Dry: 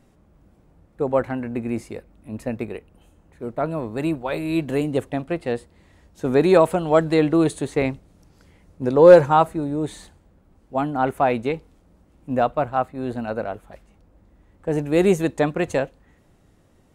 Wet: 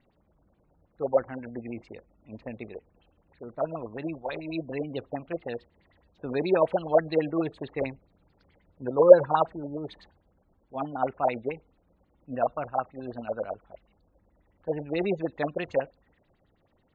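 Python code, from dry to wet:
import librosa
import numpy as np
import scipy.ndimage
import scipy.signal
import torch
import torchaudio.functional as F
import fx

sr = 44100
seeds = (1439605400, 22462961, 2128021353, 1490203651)

y = fx.filter_lfo_lowpass(x, sr, shape='sine', hz=9.3, low_hz=520.0, high_hz=4300.0, q=4.3)
y = fx.spec_gate(y, sr, threshold_db=-30, keep='strong')
y = y * 10.0 ** (-12.0 / 20.0)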